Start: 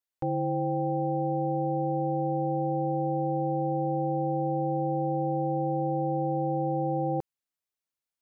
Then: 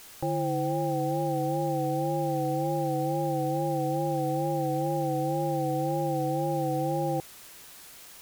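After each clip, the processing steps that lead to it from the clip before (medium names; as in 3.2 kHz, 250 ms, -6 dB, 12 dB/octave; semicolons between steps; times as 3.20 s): word length cut 8-bit, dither triangular; wow and flutter 54 cents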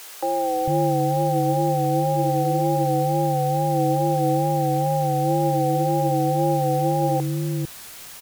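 bands offset in time highs, lows 450 ms, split 340 Hz; trim +8.5 dB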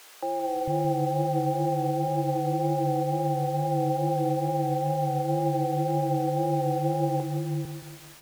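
treble shelf 6 kHz -7.5 dB; bit-crushed delay 172 ms, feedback 55%, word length 7-bit, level -9 dB; trim -6 dB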